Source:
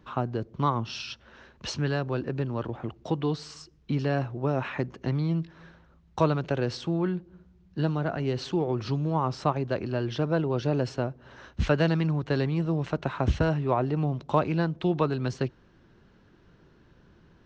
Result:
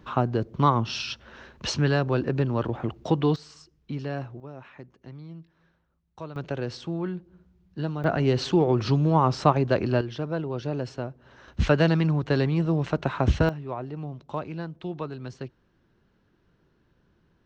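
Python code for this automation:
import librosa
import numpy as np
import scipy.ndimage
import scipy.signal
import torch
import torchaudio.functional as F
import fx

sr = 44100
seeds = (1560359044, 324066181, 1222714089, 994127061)

y = fx.gain(x, sr, db=fx.steps((0.0, 5.0), (3.36, -5.0), (4.4, -15.0), (6.36, -3.0), (8.04, 6.0), (10.01, -3.5), (11.48, 3.0), (13.49, -8.0)))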